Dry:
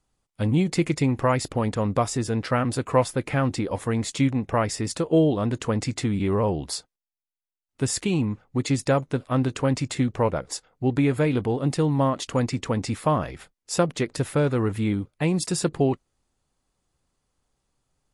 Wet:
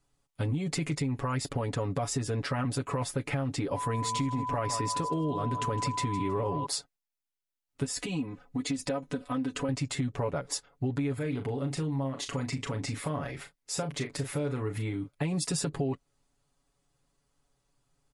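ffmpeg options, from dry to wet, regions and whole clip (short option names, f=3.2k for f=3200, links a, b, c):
-filter_complex "[0:a]asettb=1/sr,asplit=3[a][b][c];[a]atrim=end=3.764[d];[b]atrim=start=3.76:end=6.66,asetpts=PTS-STARTPTS,afade=t=in:d=0.004:c=qsin,afade=t=out:st=2.896:d=0.004:c=qsin,aeval=exprs='val(0)+0.0251*sin(2*PI*1000*n/s)':c=same,aecho=1:1:159|318|477:0.188|0.0527|0.0148,atrim=end_sample=127890[e];[c]atrim=start=6.656[f];[d][e]acrossfade=d=0.004:c1=hsin:c2=qsin[g];[g][f]acrossfade=d=0.004:c1=qsin:c2=hsin,asettb=1/sr,asplit=3[h][i][j];[h]atrim=end=7.844[k];[i]atrim=start=7.84:end=9.69,asetpts=PTS-STARTPTS,afade=t=in:d=0.004:c=qsin,afade=t=out:st=1.846:d=0.004:c=qsin,aecho=1:1:4:0.71,atrim=end_sample=81585,acompressor=threshold=-31dB:ratio=2.5:attack=3.2:release=140:knee=1:detection=peak[l];[j]atrim=start=9.686[m];[k][l]acrossfade=d=0.004:c1=hsin:c2=qsin[n];[n][m]acrossfade=d=0.004:c1=qsin:c2=hsin,asettb=1/sr,asplit=3[o][p][q];[o]atrim=end=11.144[r];[p]atrim=start=11.14:end=15.08,asetpts=PTS-STARTPTS,afade=t=in:d=0.004:c=qsin,afade=t=out:st=3.936:d=0.004:c=qsin,equalizer=f=2.1k:t=o:w=0.24:g=4,acompressor=threshold=-34dB:ratio=2:attack=3.2:release=140:knee=1:detection=peak,asplit=2[s][t];[t]adelay=37,volume=-9dB[u];[s][u]amix=inputs=2:normalize=0,atrim=end_sample=173754[v];[q]atrim=start=15.076[w];[r][v]acrossfade=d=0.004:c1=hsin:c2=qsin[x];[x][w]acrossfade=d=0.004:c1=qsin:c2=hsin,alimiter=limit=-17dB:level=0:latency=1:release=10,aecho=1:1:7.1:0.76,acompressor=threshold=-25dB:ratio=6,volume=-2dB"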